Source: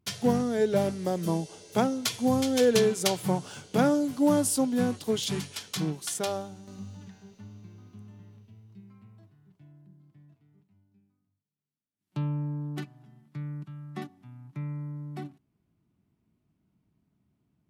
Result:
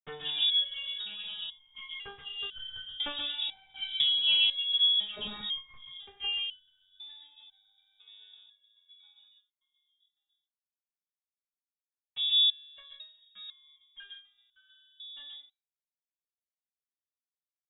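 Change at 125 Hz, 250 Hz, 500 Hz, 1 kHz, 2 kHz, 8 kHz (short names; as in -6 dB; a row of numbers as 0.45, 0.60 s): under -30 dB, -30.0 dB, -26.5 dB, -18.0 dB, -0.5 dB, under -40 dB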